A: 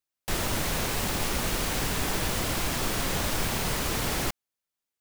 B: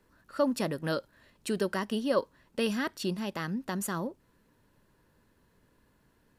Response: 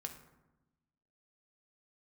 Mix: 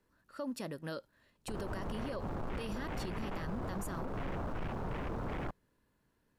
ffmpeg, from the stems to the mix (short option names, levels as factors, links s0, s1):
-filter_complex "[0:a]lowpass=f=1400:p=1,afwtdn=0.0158,asoftclip=type=tanh:threshold=0.0335,adelay=1200,volume=0.668[s0];[1:a]volume=0.376[s1];[s0][s1]amix=inputs=2:normalize=0,alimiter=level_in=2.24:limit=0.0631:level=0:latency=1:release=63,volume=0.447"